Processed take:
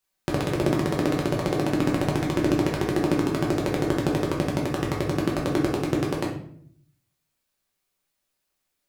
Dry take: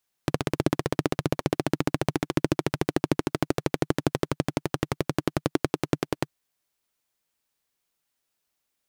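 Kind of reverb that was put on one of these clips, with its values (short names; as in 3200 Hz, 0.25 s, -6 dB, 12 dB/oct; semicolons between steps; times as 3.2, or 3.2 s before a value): shoebox room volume 95 m³, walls mixed, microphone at 1.1 m; gain -2.5 dB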